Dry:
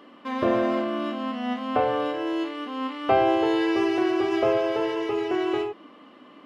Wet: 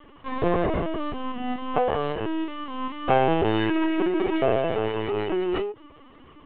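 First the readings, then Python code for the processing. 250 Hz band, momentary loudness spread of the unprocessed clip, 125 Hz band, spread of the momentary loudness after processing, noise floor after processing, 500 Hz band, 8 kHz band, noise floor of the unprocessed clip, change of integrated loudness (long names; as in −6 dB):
−1.0 dB, 8 LU, +10.0 dB, 10 LU, −50 dBFS, −0.5 dB, can't be measured, −50 dBFS, −0.5 dB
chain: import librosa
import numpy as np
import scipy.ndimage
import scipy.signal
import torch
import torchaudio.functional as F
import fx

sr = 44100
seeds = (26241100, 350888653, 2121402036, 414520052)

y = fx.lpc_vocoder(x, sr, seeds[0], excitation='pitch_kept', order=16)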